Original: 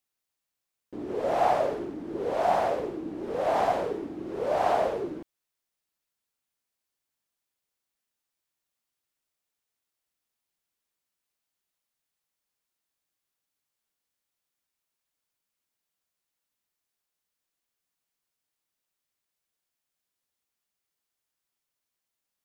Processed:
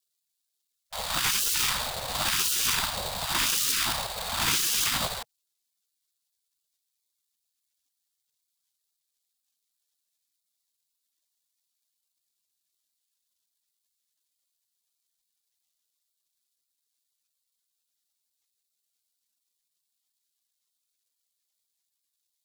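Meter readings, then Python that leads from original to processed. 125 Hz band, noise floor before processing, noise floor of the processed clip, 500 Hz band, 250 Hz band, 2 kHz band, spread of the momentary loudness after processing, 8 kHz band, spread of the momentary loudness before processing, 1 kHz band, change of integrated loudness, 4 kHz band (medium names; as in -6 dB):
+4.0 dB, under -85 dBFS, -82 dBFS, -15.0 dB, -8.5 dB, +9.5 dB, 8 LU, no reading, 11 LU, -6.5 dB, +3.0 dB, +21.0 dB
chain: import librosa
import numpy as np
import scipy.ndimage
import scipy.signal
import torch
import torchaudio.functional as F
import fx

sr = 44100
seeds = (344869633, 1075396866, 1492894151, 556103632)

y = fx.fold_sine(x, sr, drive_db=14, ceiling_db=-11.5)
y = fx.sample_hold(y, sr, seeds[0], rate_hz=4200.0, jitter_pct=20)
y = fx.spec_gate(y, sr, threshold_db=-20, keep='weak')
y = F.gain(torch.from_numpy(y), -1.0).numpy()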